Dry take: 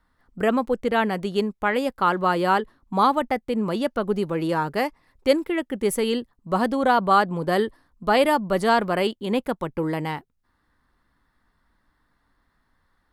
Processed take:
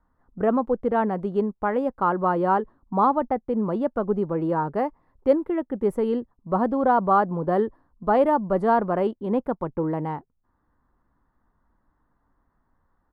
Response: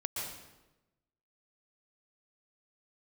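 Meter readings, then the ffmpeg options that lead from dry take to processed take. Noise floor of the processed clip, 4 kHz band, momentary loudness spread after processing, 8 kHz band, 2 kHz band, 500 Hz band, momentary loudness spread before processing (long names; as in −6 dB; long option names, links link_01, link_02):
−71 dBFS, below −15 dB, 7 LU, below −20 dB, −8.5 dB, 0.0 dB, 8 LU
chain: -af "firequalizer=gain_entry='entry(970,0);entry(2300,-17);entry(4600,-24)':delay=0.05:min_phase=1"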